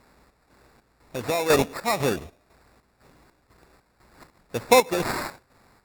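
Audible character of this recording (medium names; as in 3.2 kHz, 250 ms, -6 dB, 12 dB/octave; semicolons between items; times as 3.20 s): a quantiser's noise floor 10-bit, dither triangular; chopped level 2 Hz, depth 60%, duty 60%; aliases and images of a low sample rate 3.1 kHz, jitter 0%; Vorbis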